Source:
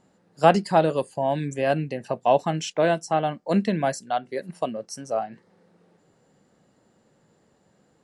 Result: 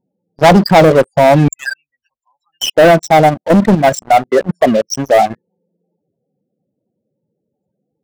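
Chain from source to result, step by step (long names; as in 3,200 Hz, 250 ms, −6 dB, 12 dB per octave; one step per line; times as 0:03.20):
spectral peaks only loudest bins 16
0:01.48–0:02.70: inverse Chebyshev band-stop filter 110–700 Hz, stop band 50 dB
leveller curve on the samples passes 5
0:03.29–0:03.96: output level in coarse steps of 9 dB
level +2.5 dB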